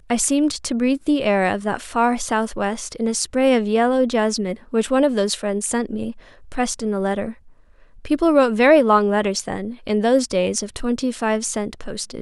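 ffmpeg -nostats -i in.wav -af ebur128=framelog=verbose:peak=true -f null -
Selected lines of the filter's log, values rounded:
Integrated loudness:
  I:         -19.9 LUFS
  Threshold: -30.3 LUFS
Loudness range:
  LRA:         4.5 LU
  Threshold: -40.1 LUFS
  LRA low:   -22.7 LUFS
  LRA high:  -18.2 LUFS
True peak:
  Peak:       -2.6 dBFS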